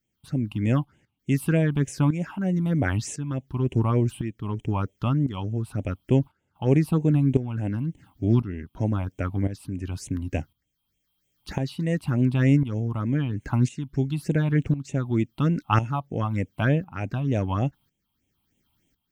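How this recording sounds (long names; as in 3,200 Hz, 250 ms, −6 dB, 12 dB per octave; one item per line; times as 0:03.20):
phaser sweep stages 6, 3.3 Hz, lowest notch 450–1,300 Hz
tremolo saw up 0.95 Hz, depth 75%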